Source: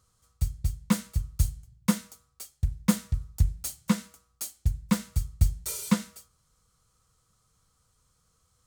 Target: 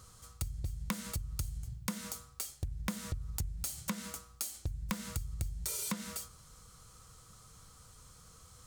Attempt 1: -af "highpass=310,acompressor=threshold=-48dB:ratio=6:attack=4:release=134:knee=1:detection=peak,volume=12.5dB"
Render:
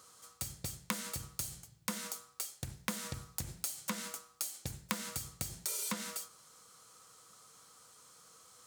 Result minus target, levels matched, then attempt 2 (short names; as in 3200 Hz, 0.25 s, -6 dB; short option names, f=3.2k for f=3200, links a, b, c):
250 Hz band -3.0 dB
-af "acompressor=threshold=-48dB:ratio=6:attack=4:release=134:knee=1:detection=peak,volume=12.5dB"